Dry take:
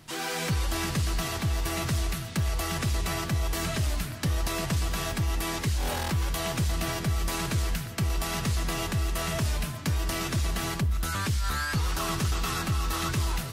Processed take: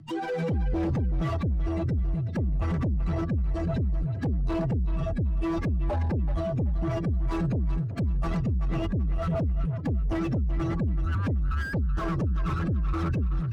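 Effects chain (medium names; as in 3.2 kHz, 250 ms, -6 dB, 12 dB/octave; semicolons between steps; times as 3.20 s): spectral contrast enhancement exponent 2.7; rotary cabinet horn 0.65 Hz, later 8 Hz, at 7.16 s; in parallel at -9 dB: sine folder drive 10 dB, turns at -20.5 dBFS; on the sum: resampled via 22.05 kHz; on a send: tape echo 380 ms, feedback 31%, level -11 dB, low-pass 5.8 kHz; on the sum: slew-rate limiter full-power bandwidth 34 Hz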